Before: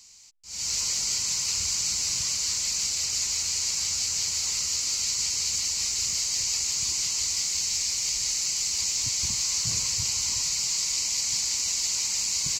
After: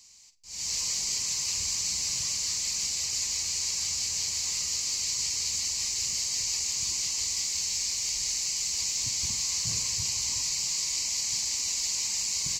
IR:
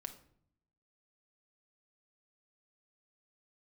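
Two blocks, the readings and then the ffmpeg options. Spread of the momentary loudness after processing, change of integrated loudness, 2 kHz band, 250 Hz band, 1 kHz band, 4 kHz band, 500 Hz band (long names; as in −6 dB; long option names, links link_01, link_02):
1 LU, −2.5 dB, −2.5 dB, −2.5 dB, −3.0 dB, −2.5 dB, can't be measured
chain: -filter_complex "[0:a]asuperstop=centerf=1400:order=4:qfactor=5.8,asplit=2[link_01][link_02];[1:a]atrim=start_sample=2205,adelay=45[link_03];[link_02][link_03]afir=irnorm=-1:irlink=0,volume=-7dB[link_04];[link_01][link_04]amix=inputs=2:normalize=0,volume=-3dB"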